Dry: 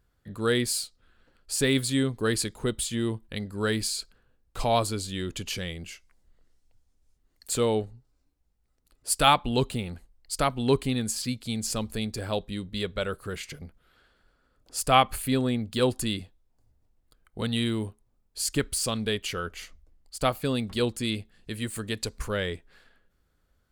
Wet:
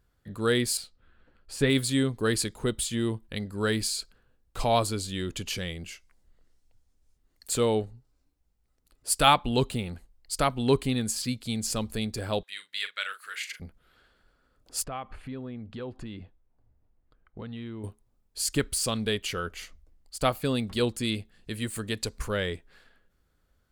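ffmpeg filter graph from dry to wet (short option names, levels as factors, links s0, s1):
-filter_complex "[0:a]asettb=1/sr,asplit=3[s0][s1][s2];[s0]atrim=end=0.774[s3];[s1]atrim=start=0.77:end=1.7,asetpts=PTS-STARTPTS,afade=t=in:d=0.004:c=qsin,afade=t=out:st=0.926:d=0.004:c=qsin,bass=f=250:g=2,treble=f=4000:g=-12,asplit=2[s4][s5];[s5]adelay=14,volume=0.251[s6];[s4][s6]amix=inputs=2:normalize=0,atrim=end_sample=41013[s7];[s2]atrim=start=1.696[s8];[s3][s7]acrossfade=d=0.004:c1=hsin:c2=qsin[s9];[s9][s8]acrossfade=d=0.004:c1=qsin:c2=hsin,asettb=1/sr,asplit=3[s10][s11][s12];[s10]atrim=end=12.434[s13];[s11]atrim=start=12.43:end=13.6,asetpts=PTS-STARTPTS,afade=t=in:d=0.004:c=qsin,afade=t=out:st=1.166:d=0.004:c=qsin,highpass=f=1800:t=q:w=2,asplit=2[s14][s15];[s15]adelay=41,volume=0.299[s16];[s14][s16]amix=inputs=2:normalize=0,atrim=end_sample=51597[s17];[s12]atrim=start=13.596[s18];[s13][s17]acrossfade=d=0.004:c1=hsin:c2=qsin[s19];[s19][s18]acrossfade=d=0.004:c1=qsin:c2=hsin,asettb=1/sr,asplit=3[s20][s21][s22];[s20]atrim=end=14.844[s23];[s21]atrim=start=14.84:end=17.84,asetpts=PTS-STARTPTS,afade=t=in:d=0.004:c=qsin,afade=t=out:st=2.996:d=0.004:c=qsin,lowpass=2100,acompressor=threshold=0.0126:ratio=3:attack=3.2:release=140:knee=1:detection=peak[s24];[s22]atrim=start=17.836[s25];[s23][s24]acrossfade=d=0.004:c1=hsin:c2=qsin[s26];[s26][s25]acrossfade=d=0.004:c1=qsin:c2=hsin"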